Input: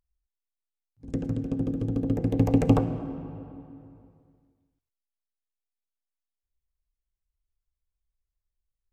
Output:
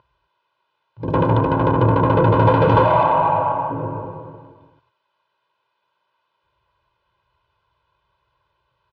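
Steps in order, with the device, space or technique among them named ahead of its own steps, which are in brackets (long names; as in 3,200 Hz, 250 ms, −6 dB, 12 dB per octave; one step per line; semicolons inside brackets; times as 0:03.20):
0:02.84–0:03.71: low shelf with overshoot 540 Hz −8.5 dB, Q 3
overdrive pedal into a guitar cabinet (mid-hump overdrive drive 42 dB, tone 1,200 Hz, clips at −6 dBFS; loudspeaker in its box 87–3,600 Hz, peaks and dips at 120 Hz +6 dB, 240 Hz +4 dB, 460 Hz −7 dB, 970 Hz +7 dB, 2,000 Hz −10 dB)
comb filter 2 ms, depth 96%
level −1 dB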